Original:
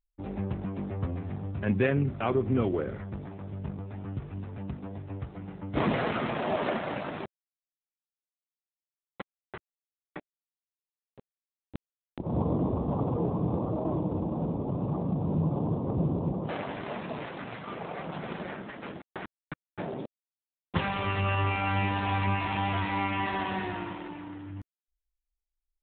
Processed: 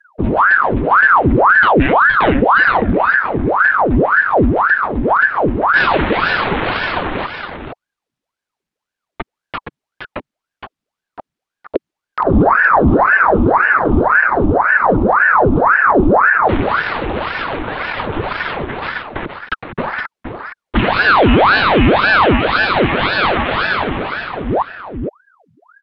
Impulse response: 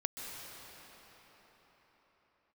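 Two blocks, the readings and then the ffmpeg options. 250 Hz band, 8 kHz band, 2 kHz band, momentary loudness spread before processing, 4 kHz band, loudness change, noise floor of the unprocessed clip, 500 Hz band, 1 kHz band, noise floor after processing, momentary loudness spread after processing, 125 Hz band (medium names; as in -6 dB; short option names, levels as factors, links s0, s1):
+14.0 dB, no reading, +26.0 dB, 16 LU, +18.5 dB, +18.5 dB, under -85 dBFS, +17.5 dB, +21.5 dB, -84 dBFS, 16 LU, +9.5 dB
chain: -filter_complex "[0:a]acrossover=split=140|1100[s0][s1][s2];[s1]acompressor=threshold=0.0112:ratio=6[s3];[s0][s3][s2]amix=inputs=3:normalize=0,aemphasis=mode=reproduction:type=bsi,aecho=1:1:468:0.473,apsyclip=11.9,equalizer=f=290:t=o:w=0.56:g=-13.5,aeval=exprs='val(0)*sin(2*PI*890*n/s+890*0.85/1.9*sin(2*PI*1.9*n/s))':c=same,volume=0.75"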